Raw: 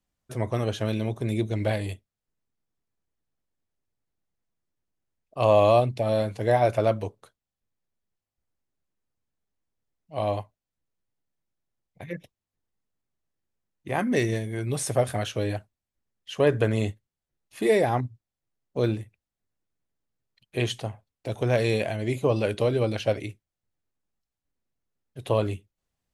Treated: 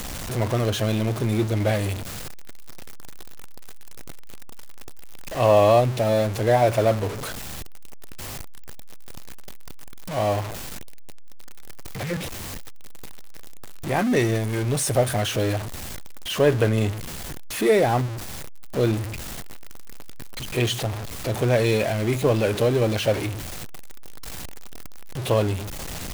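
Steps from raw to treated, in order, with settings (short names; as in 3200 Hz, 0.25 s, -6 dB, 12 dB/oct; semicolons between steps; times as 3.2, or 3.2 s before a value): zero-crossing step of -27 dBFS; gain +1.5 dB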